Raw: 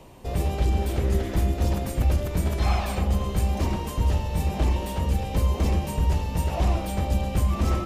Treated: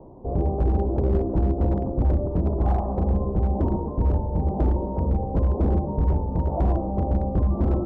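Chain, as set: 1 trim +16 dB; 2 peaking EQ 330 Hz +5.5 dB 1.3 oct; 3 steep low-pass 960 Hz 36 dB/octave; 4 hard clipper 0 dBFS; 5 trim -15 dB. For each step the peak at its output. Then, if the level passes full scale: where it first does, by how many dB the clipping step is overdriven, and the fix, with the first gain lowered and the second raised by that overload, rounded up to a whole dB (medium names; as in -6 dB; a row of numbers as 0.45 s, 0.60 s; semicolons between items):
+3.0 dBFS, +5.5 dBFS, +5.0 dBFS, 0.0 dBFS, -15.0 dBFS; step 1, 5.0 dB; step 1 +11 dB, step 5 -10 dB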